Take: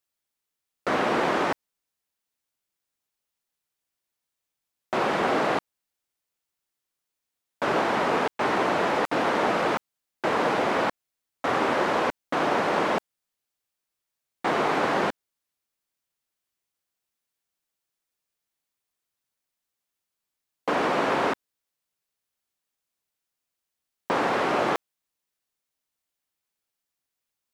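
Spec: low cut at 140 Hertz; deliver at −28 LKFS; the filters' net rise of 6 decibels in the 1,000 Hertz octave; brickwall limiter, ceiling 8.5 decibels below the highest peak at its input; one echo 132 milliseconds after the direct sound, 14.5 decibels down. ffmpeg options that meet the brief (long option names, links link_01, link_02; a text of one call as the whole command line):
ffmpeg -i in.wav -af "highpass=140,equalizer=frequency=1000:width_type=o:gain=7.5,alimiter=limit=-14.5dB:level=0:latency=1,aecho=1:1:132:0.188,volume=-3.5dB" out.wav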